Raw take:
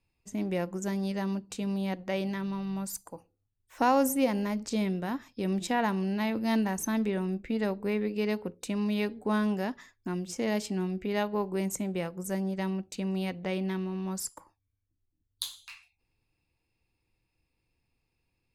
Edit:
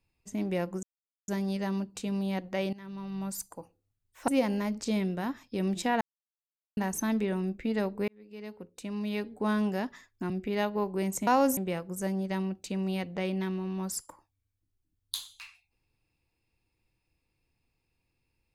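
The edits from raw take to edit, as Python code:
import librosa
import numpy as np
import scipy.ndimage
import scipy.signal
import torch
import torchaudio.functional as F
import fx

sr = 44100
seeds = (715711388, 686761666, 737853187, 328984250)

y = fx.edit(x, sr, fx.insert_silence(at_s=0.83, length_s=0.45),
    fx.fade_in_from(start_s=2.28, length_s=0.58, floor_db=-18.5),
    fx.move(start_s=3.83, length_s=0.3, to_s=11.85),
    fx.silence(start_s=5.86, length_s=0.76),
    fx.fade_in_span(start_s=7.93, length_s=1.55),
    fx.cut(start_s=10.15, length_s=0.73), tone=tone)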